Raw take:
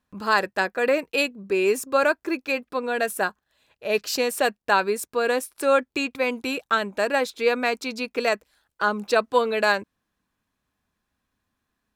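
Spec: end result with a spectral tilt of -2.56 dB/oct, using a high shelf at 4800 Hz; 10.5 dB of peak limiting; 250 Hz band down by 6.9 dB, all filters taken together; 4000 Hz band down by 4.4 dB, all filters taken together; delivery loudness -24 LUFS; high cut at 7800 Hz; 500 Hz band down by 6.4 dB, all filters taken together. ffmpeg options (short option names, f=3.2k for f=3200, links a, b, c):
-af "lowpass=7.8k,equalizer=f=250:t=o:g=-6.5,equalizer=f=500:t=o:g=-6,equalizer=f=4k:t=o:g=-3.5,highshelf=f=4.8k:g=-3.5,volume=7dB,alimiter=limit=-12dB:level=0:latency=1"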